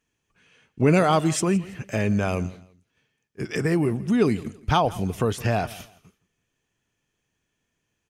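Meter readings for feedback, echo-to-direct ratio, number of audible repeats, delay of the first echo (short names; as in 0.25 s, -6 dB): 27%, -19.5 dB, 2, 0.166 s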